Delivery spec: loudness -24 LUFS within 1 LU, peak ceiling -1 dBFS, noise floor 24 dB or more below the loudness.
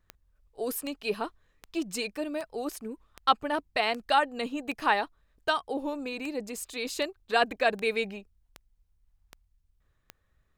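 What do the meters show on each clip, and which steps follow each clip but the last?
clicks 14; loudness -30.5 LUFS; peak -8.0 dBFS; loudness target -24.0 LUFS
-> de-click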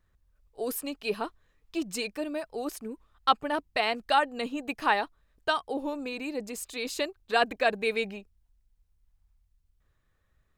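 clicks 0; loudness -30.5 LUFS; peak -8.0 dBFS; loudness target -24.0 LUFS
-> gain +6.5 dB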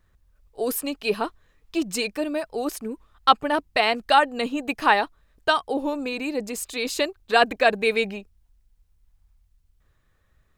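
loudness -24.0 LUFS; peak -1.5 dBFS; noise floor -65 dBFS

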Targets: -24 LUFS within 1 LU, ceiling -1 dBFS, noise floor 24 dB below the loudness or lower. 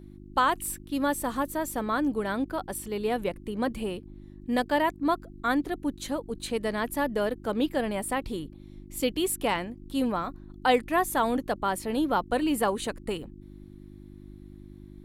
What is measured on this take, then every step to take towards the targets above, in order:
hum 50 Hz; harmonics up to 350 Hz; hum level -46 dBFS; loudness -29.0 LUFS; peak -10.5 dBFS; loudness target -24.0 LUFS
-> de-hum 50 Hz, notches 7; gain +5 dB

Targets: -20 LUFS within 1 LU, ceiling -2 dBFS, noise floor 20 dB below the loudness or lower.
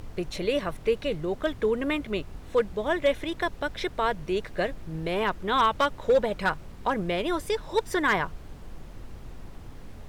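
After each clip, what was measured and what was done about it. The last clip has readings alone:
clipped 0.3%; flat tops at -15.0 dBFS; noise floor -44 dBFS; noise floor target -48 dBFS; loudness -27.5 LUFS; peak -15.0 dBFS; loudness target -20.0 LUFS
-> clip repair -15 dBFS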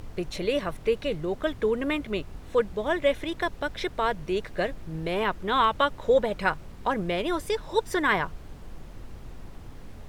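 clipped 0.0%; noise floor -44 dBFS; noise floor target -48 dBFS
-> noise print and reduce 6 dB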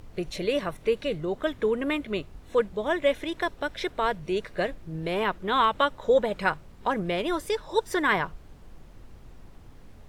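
noise floor -49 dBFS; loudness -27.5 LUFS; peak -8.5 dBFS; loudness target -20.0 LUFS
-> gain +7.5 dB; limiter -2 dBFS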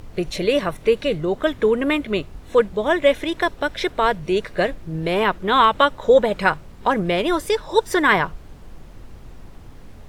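loudness -20.0 LUFS; peak -2.0 dBFS; noise floor -42 dBFS

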